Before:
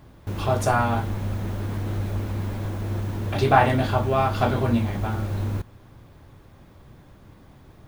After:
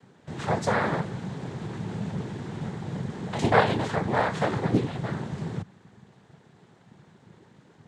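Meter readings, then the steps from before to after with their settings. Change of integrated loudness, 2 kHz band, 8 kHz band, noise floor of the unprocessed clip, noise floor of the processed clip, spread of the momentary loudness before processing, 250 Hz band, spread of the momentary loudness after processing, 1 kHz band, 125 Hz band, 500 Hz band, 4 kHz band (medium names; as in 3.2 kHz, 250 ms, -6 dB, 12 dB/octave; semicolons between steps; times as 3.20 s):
-4.0 dB, -1.0 dB, -4.5 dB, -50 dBFS, -58 dBFS, 10 LU, -2.0 dB, 13 LU, -5.0 dB, -6.5 dB, -2.5 dB, -1.5 dB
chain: noise-vocoded speech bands 6; loudspeaker Doppler distortion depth 0.31 ms; trim -3 dB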